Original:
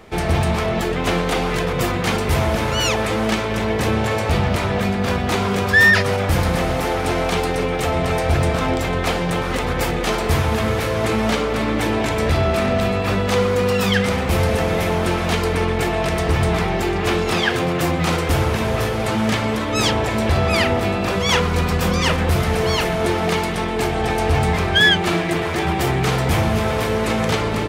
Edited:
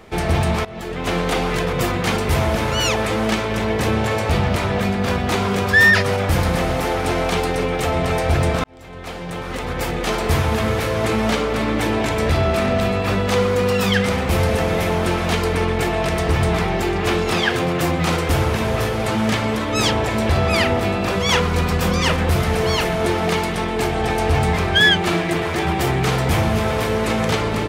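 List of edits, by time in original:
0.65–1.25 fade in, from -18.5 dB
8.64–10.28 fade in linear

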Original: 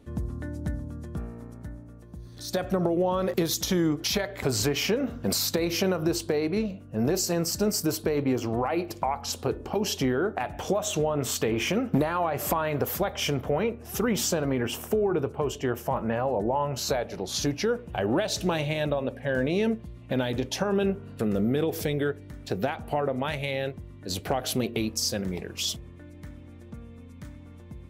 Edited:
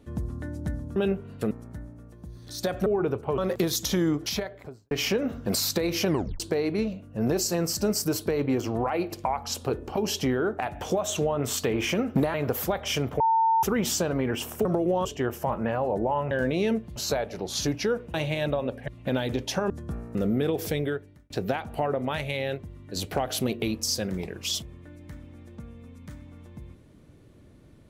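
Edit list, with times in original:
0.96–1.41 swap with 20.74–21.29
2.76–3.16 swap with 14.97–15.49
3.92–4.69 studio fade out
5.85 tape stop 0.33 s
12.12–12.66 cut
13.52–13.95 bleep 900 Hz -18.5 dBFS
17.93–18.53 cut
19.27–19.92 move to 16.75
21.94–22.44 fade out

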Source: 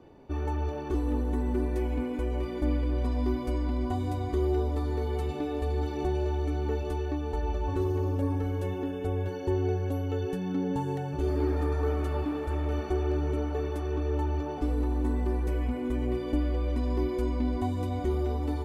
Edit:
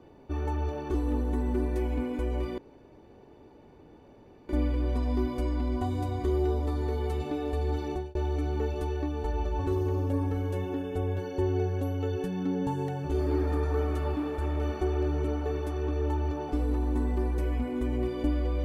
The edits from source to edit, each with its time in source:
2.58 insert room tone 1.91 s
5.96–6.24 fade out

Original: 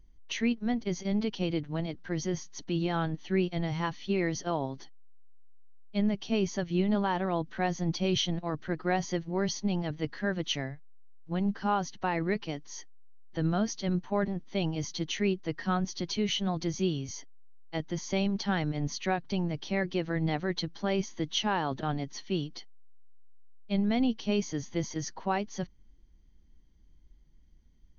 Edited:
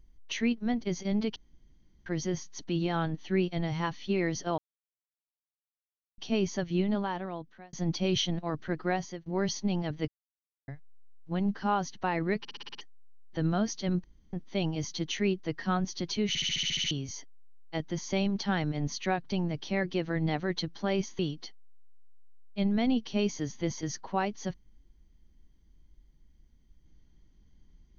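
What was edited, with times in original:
1.36–2.06 room tone
4.58–6.18 mute
6.73–7.73 fade out
8.86–9.26 fade out, to -20.5 dB
10.08–10.68 mute
12.39 stutter in place 0.06 s, 7 plays
14.04–14.33 room tone
16.28 stutter in place 0.07 s, 9 plays
21.19–22.32 cut

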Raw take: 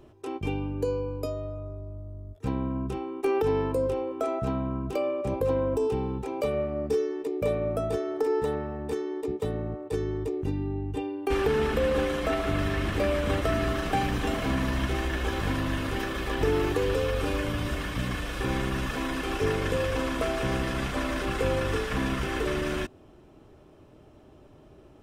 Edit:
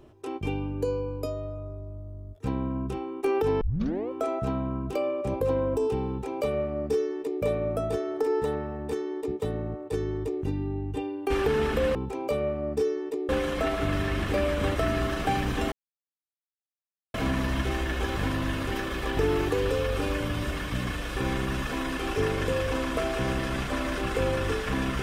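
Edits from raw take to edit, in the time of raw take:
3.61 tape start 0.49 s
6.08–7.42 copy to 11.95
14.38 insert silence 1.42 s

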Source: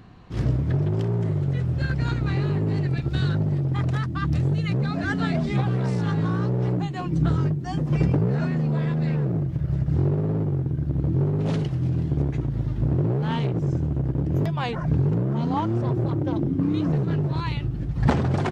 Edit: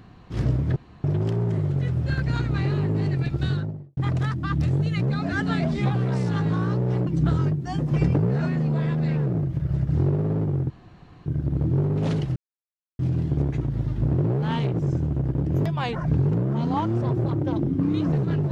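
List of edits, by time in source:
0.76 insert room tone 0.28 s
3.08–3.69 studio fade out
6.79–7.06 cut
10.69 insert room tone 0.56 s
11.79 insert silence 0.63 s

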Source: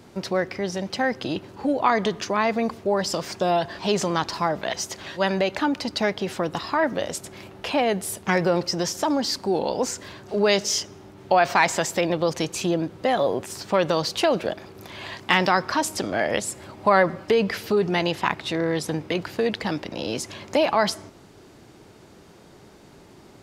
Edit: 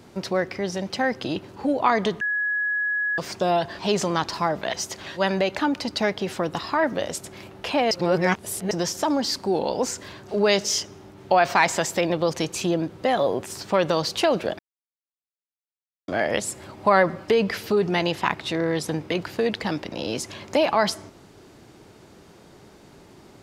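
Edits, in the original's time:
2.21–3.18 bleep 1680 Hz -21.5 dBFS
7.91–8.71 reverse
14.59–16.08 mute

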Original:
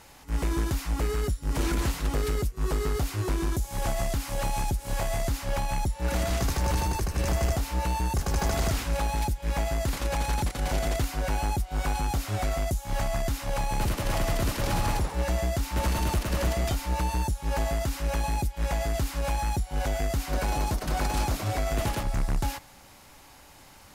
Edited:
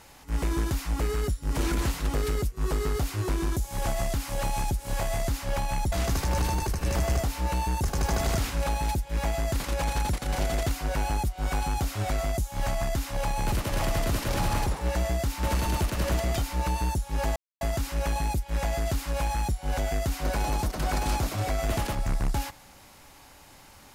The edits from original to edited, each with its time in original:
5.92–6.25 cut
17.69 insert silence 0.25 s

